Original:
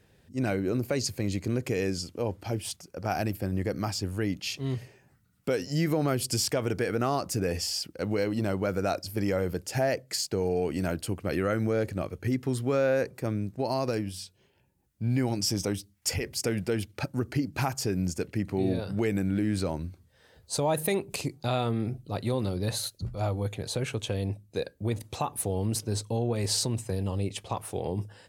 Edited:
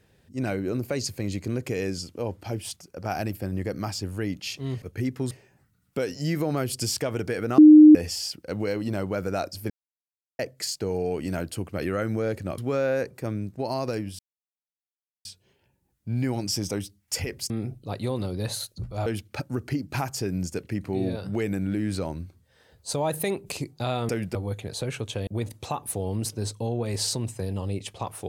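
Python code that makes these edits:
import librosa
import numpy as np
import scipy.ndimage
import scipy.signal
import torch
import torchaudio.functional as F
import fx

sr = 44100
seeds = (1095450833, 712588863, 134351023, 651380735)

y = fx.edit(x, sr, fx.bleep(start_s=7.09, length_s=0.37, hz=305.0, db=-6.5),
    fx.silence(start_s=9.21, length_s=0.69),
    fx.move(start_s=12.09, length_s=0.49, to_s=4.82),
    fx.insert_silence(at_s=14.19, length_s=1.06),
    fx.swap(start_s=16.44, length_s=0.26, other_s=21.73, other_length_s=1.56),
    fx.cut(start_s=24.21, length_s=0.56), tone=tone)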